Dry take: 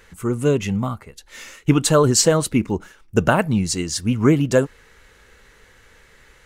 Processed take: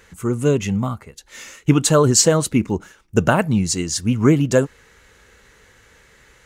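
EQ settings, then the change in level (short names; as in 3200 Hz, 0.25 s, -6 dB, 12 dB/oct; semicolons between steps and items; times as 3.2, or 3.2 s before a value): HPF 110 Hz 6 dB/oct; low shelf 150 Hz +7 dB; bell 6700 Hz +4 dB 0.4 oct; 0.0 dB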